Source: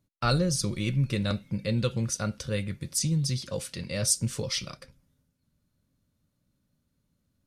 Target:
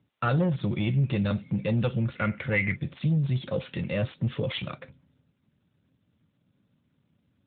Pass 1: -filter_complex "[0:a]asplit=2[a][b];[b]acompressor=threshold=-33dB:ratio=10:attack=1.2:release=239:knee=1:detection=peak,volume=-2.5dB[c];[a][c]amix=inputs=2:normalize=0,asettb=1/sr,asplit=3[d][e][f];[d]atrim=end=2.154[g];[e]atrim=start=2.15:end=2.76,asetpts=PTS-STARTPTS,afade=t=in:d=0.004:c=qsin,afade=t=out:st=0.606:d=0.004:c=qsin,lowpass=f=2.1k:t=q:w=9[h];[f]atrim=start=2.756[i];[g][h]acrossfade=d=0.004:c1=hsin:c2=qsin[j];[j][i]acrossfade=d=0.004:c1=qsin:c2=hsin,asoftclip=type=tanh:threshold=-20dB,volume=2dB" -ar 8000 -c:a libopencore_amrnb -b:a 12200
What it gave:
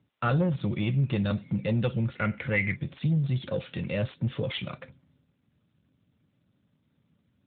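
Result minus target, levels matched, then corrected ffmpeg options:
compressor: peak gain reduction +5.5 dB
-filter_complex "[0:a]asplit=2[a][b];[b]acompressor=threshold=-27dB:ratio=10:attack=1.2:release=239:knee=1:detection=peak,volume=-2.5dB[c];[a][c]amix=inputs=2:normalize=0,asettb=1/sr,asplit=3[d][e][f];[d]atrim=end=2.154[g];[e]atrim=start=2.15:end=2.76,asetpts=PTS-STARTPTS,afade=t=in:d=0.004:c=qsin,afade=t=out:st=0.606:d=0.004:c=qsin,lowpass=f=2.1k:t=q:w=9[h];[f]atrim=start=2.756[i];[g][h]acrossfade=d=0.004:c1=hsin:c2=qsin[j];[j][i]acrossfade=d=0.004:c1=qsin:c2=hsin,asoftclip=type=tanh:threshold=-20dB,volume=2dB" -ar 8000 -c:a libopencore_amrnb -b:a 12200

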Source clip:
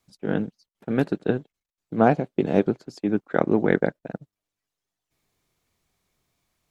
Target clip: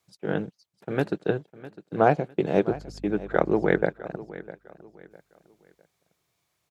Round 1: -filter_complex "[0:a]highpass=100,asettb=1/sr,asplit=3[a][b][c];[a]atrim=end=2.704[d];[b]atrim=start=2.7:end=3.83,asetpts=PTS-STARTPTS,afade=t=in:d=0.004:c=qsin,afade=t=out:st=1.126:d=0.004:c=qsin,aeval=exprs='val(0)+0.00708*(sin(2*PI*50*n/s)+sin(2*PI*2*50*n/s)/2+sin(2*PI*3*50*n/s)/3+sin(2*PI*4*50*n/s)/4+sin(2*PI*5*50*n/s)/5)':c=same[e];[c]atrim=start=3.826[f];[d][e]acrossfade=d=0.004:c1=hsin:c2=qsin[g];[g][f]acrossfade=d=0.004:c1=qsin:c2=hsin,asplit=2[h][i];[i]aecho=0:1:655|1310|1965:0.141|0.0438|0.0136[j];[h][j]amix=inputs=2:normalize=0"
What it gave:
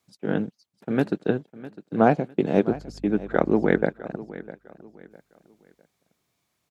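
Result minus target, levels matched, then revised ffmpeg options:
250 Hz band +3.0 dB
-filter_complex "[0:a]highpass=100,equalizer=f=240:t=o:w=0.34:g=-13.5,asettb=1/sr,asplit=3[a][b][c];[a]atrim=end=2.704[d];[b]atrim=start=2.7:end=3.83,asetpts=PTS-STARTPTS,afade=t=in:d=0.004:c=qsin,afade=t=out:st=1.126:d=0.004:c=qsin,aeval=exprs='val(0)+0.00708*(sin(2*PI*50*n/s)+sin(2*PI*2*50*n/s)/2+sin(2*PI*3*50*n/s)/3+sin(2*PI*4*50*n/s)/4+sin(2*PI*5*50*n/s)/5)':c=same[e];[c]atrim=start=3.826[f];[d][e]acrossfade=d=0.004:c1=hsin:c2=qsin[g];[g][f]acrossfade=d=0.004:c1=qsin:c2=hsin,asplit=2[h][i];[i]aecho=0:1:655|1310|1965:0.141|0.0438|0.0136[j];[h][j]amix=inputs=2:normalize=0"

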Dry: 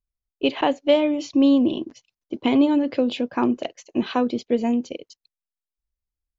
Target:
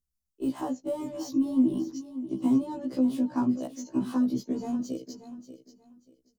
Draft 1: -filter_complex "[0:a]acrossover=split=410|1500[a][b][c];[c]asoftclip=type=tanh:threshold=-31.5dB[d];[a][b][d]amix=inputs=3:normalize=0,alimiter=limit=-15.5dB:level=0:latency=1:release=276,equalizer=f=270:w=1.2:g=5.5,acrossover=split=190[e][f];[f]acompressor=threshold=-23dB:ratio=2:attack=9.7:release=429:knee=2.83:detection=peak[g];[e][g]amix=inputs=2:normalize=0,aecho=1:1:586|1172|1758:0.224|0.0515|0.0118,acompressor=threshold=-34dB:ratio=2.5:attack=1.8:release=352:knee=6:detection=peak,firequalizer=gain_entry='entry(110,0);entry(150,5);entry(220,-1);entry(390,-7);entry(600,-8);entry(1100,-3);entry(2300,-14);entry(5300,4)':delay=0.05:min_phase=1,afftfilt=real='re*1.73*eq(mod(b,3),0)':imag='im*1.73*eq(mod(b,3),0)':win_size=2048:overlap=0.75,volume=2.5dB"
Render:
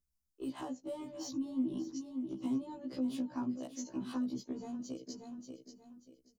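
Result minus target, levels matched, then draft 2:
compressor: peak gain reduction +12.5 dB; soft clip: distortion -6 dB
-filter_complex "[0:a]acrossover=split=410|1500[a][b][c];[c]asoftclip=type=tanh:threshold=-41.5dB[d];[a][b][d]amix=inputs=3:normalize=0,alimiter=limit=-15.5dB:level=0:latency=1:release=276,equalizer=f=270:w=1.2:g=5.5,acrossover=split=190[e][f];[f]acompressor=threshold=-23dB:ratio=2:attack=9.7:release=429:knee=2.83:detection=peak[g];[e][g]amix=inputs=2:normalize=0,firequalizer=gain_entry='entry(110,0);entry(150,5);entry(220,-1);entry(390,-7);entry(600,-8);entry(1100,-3);entry(2300,-14);entry(5300,4)':delay=0.05:min_phase=1,aecho=1:1:586|1172|1758:0.224|0.0515|0.0118,afftfilt=real='re*1.73*eq(mod(b,3),0)':imag='im*1.73*eq(mod(b,3),0)':win_size=2048:overlap=0.75,volume=2.5dB"

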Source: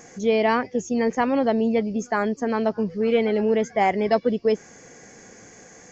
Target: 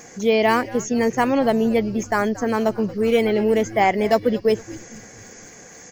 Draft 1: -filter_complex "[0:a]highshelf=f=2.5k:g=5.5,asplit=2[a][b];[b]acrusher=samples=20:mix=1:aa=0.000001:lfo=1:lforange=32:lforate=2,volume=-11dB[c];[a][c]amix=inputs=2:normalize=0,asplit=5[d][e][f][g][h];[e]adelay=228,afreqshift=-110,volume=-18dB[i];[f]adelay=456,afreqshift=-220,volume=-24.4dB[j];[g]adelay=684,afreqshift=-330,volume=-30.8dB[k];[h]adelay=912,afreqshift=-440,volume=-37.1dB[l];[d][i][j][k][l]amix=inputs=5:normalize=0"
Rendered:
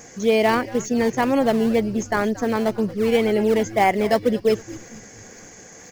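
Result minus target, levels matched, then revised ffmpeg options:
decimation with a swept rate: distortion +13 dB
-filter_complex "[0:a]highshelf=f=2.5k:g=5.5,asplit=2[a][b];[b]acrusher=samples=4:mix=1:aa=0.000001:lfo=1:lforange=6.4:lforate=2,volume=-11dB[c];[a][c]amix=inputs=2:normalize=0,asplit=5[d][e][f][g][h];[e]adelay=228,afreqshift=-110,volume=-18dB[i];[f]adelay=456,afreqshift=-220,volume=-24.4dB[j];[g]adelay=684,afreqshift=-330,volume=-30.8dB[k];[h]adelay=912,afreqshift=-440,volume=-37.1dB[l];[d][i][j][k][l]amix=inputs=5:normalize=0"

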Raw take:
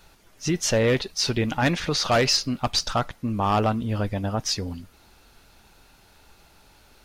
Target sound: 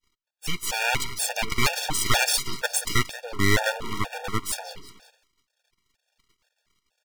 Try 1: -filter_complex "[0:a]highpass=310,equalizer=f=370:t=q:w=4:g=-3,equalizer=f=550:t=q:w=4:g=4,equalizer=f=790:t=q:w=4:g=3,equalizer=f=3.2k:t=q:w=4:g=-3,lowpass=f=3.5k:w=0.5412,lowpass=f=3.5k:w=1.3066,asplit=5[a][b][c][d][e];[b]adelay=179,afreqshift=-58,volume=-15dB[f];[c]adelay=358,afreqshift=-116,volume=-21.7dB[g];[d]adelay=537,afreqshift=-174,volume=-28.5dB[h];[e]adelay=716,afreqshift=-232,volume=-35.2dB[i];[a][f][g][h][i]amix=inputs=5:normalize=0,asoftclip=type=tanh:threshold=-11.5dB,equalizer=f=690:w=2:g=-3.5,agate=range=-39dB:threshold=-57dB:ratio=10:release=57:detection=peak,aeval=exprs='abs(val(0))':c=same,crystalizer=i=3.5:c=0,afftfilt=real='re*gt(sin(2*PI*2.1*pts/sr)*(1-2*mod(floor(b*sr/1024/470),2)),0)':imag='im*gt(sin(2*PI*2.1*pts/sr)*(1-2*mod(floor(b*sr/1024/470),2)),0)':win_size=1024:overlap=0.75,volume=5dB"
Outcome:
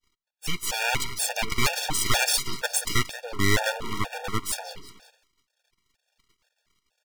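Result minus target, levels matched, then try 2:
soft clip: distortion +20 dB
-filter_complex "[0:a]highpass=310,equalizer=f=370:t=q:w=4:g=-3,equalizer=f=550:t=q:w=4:g=4,equalizer=f=790:t=q:w=4:g=3,equalizer=f=3.2k:t=q:w=4:g=-3,lowpass=f=3.5k:w=0.5412,lowpass=f=3.5k:w=1.3066,asplit=5[a][b][c][d][e];[b]adelay=179,afreqshift=-58,volume=-15dB[f];[c]adelay=358,afreqshift=-116,volume=-21.7dB[g];[d]adelay=537,afreqshift=-174,volume=-28.5dB[h];[e]adelay=716,afreqshift=-232,volume=-35.2dB[i];[a][f][g][h][i]amix=inputs=5:normalize=0,asoftclip=type=tanh:threshold=-0.5dB,equalizer=f=690:w=2:g=-3.5,agate=range=-39dB:threshold=-57dB:ratio=10:release=57:detection=peak,aeval=exprs='abs(val(0))':c=same,crystalizer=i=3.5:c=0,afftfilt=real='re*gt(sin(2*PI*2.1*pts/sr)*(1-2*mod(floor(b*sr/1024/470),2)),0)':imag='im*gt(sin(2*PI*2.1*pts/sr)*(1-2*mod(floor(b*sr/1024/470),2)),0)':win_size=1024:overlap=0.75,volume=5dB"

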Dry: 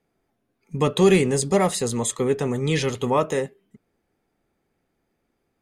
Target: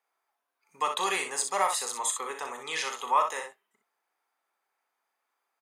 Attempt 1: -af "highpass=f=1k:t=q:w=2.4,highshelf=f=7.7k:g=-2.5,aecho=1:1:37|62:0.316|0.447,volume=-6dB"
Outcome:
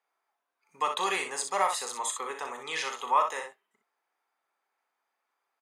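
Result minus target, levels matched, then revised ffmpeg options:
8000 Hz band -3.0 dB
-af "highpass=f=1k:t=q:w=2.4,highshelf=f=7.7k:g=5,aecho=1:1:37|62:0.316|0.447,volume=-6dB"

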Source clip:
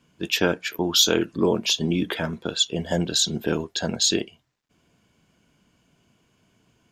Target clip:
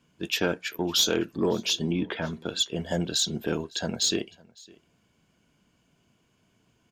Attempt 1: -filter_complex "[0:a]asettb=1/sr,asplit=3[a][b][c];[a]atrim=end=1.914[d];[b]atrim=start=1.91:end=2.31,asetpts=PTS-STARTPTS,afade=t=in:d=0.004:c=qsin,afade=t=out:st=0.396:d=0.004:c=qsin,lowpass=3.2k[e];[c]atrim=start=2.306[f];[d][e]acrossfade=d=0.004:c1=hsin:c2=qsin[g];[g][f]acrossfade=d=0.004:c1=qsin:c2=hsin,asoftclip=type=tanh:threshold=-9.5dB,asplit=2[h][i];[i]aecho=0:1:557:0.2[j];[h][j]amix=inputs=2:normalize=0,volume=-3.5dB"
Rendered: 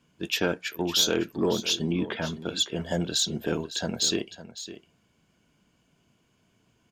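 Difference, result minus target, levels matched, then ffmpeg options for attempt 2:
echo-to-direct +11 dB
-filter_complex "[0:a]asettb=1/sr,asplit=3[a][b][c];[a]atrim=end=1.914[d];[b]atrim=start=1.91:end=2.31,asetpts=PTS-STARTPTS,afade=t=in:d=0.004:c=qsin,afade=t=out:st=0.396:d=0.004:c=qsin,lowpass=3.2k[e];[c]atrim=start=2.306[f];[d][e]acrossfade=d=0.004:c1=hsin:c2=qsin[g];[g][f]acrossfade=d=0.004:c1=qsin:c2=hsin,asoftclip=type=tanh:threshold=-9.5dB,asplit=2[h][i];[i]aecho=0:1:557:0.0562[j];[h][j]amix=inputs=2:normalize=0,volume=-3.5dB"

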